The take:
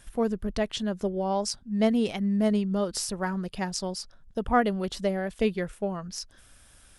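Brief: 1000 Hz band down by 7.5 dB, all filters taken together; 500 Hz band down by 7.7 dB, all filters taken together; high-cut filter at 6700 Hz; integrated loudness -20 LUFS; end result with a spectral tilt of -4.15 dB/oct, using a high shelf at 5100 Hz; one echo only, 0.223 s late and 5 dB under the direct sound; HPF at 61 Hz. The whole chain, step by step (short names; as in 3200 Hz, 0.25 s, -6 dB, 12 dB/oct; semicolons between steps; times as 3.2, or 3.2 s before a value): HPF 61 Hz; LPF 6700 Hz; bell 500 Hz -8 dB; bell 1000 Hz -7.5 dB; high shelf 5100 Hz +9 dB; echo 0.223 s -5 dB; gain +9.5 dB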